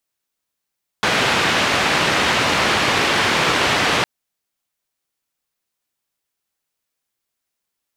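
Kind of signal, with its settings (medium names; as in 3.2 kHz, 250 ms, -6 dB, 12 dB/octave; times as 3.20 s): noise band 91–2700 Hz, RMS -17.5 dBFS 3.01 s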